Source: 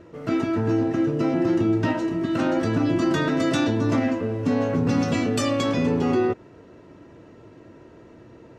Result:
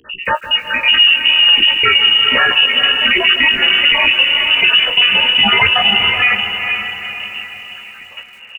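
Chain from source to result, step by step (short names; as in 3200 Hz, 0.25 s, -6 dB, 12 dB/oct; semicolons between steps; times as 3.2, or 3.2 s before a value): random spectral dropouts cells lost 61%; steep high-pass 230 Hz 48 dB/oct; notches 60/120/180/240/300 Hz; step gate "xx.x....x" 172 bpm -12 dB; wow and flutter 25 cents; chorus 0.37 Hz, delay 15 ms, depth 7.6 ms; doubler 17 ms -14 dB; diffused feedback echo 0.465 s, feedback 45%, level -8 dB; inverted band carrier 3200 Hz; maximiser +29 dB; lo-fi delay 0.16 s, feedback 35%, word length 6-bit, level -13.5 dB; gain -1.5 dB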